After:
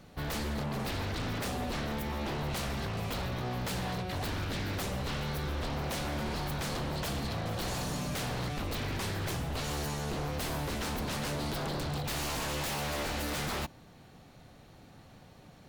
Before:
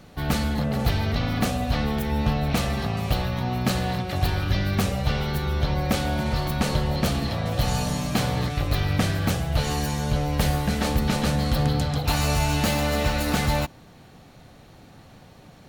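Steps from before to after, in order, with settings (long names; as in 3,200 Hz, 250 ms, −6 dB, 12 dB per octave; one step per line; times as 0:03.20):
wave folding −23.5 dBFS
level −6 dB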